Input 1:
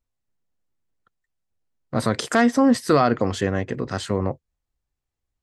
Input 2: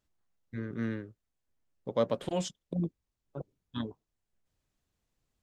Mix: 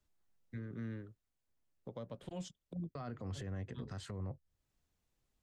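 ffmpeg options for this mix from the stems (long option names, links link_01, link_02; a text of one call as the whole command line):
ffmpeg -i stem1.wav -i stem2.wav -filter_complex "[0:a]alimiter=limit=-13.5dB:level=0:latency=1,volume=-5.5dB,asplit=3[link_01][link_02][link_03];[link_01]atrim=end=1.17,asetpts=PTS-STARTPTS,afade=type=out:start_time=1.166:duration=0.004:curve=hsin[link_04];[link_02]atrim=start=1.17:end=2.95,asetpts=PTS-STARTPTS,volume=0[link_05];[link_03]atrim=start=2.95,asetpts=PTS-STARTPTS,afade=type=in:duration=0.004:curve=hsin[link_06];[link_04][link_05][link_06]concat=n=3:v=0:a=1[link_07];[1:a]volume=-2.5dB[link_08];[link_07][link_08]amix=inputs=2:normalize=0,acrossover=split=160[link_09][link_10];[link_10]acompressor=threshold=-51dB:ratio=2[link_11];[link_09][link_11]amix=inputs=2:normalize=0,alimiter=level_in=10.5dB:limit=-24dB:level=0:latency=1:release=166,volume=-10.5dB" out.wav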